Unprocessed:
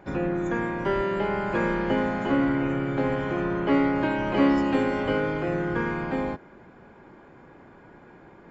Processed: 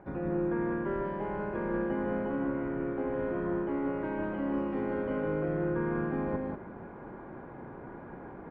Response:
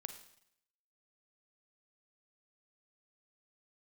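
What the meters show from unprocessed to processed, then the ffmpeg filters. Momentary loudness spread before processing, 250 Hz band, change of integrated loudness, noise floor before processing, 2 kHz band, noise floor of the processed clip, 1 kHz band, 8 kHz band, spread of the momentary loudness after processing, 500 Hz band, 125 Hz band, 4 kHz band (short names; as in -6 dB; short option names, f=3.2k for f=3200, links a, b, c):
6 LU, -7.0 dB, -7.0 dB, -51 dBFS, -11.0 dB, -46 dBFS, -9.0 dB, n/a, 14 LU, -5.5 dB, -6.0 dB, under -20 dB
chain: -af "areverse,acompressor=threshold=-36dB:ratio=5,areverse,lowpass=1.4k,aecho=1:1:154.5|192.4:0.501|0.562,volume=3.5dB"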